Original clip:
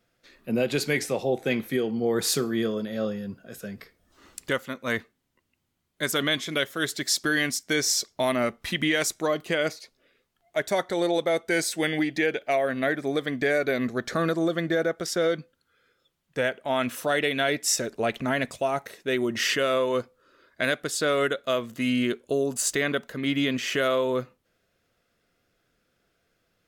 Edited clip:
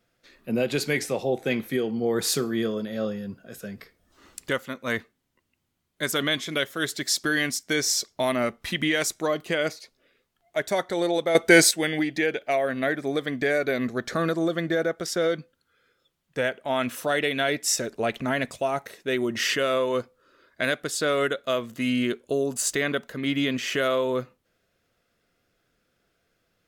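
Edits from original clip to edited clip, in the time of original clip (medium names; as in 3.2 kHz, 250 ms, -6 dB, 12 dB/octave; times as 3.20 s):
11.35–11.71 s: gain +10 dB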